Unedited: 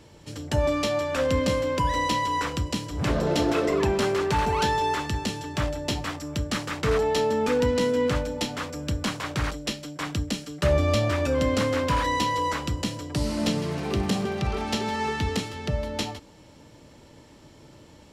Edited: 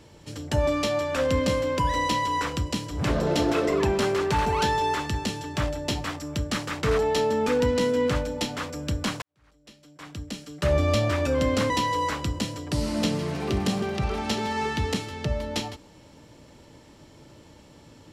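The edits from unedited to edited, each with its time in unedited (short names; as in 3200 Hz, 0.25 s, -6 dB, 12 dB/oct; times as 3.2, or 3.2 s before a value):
9.22–10.8 fade in quadratic
11.7–12.13 cut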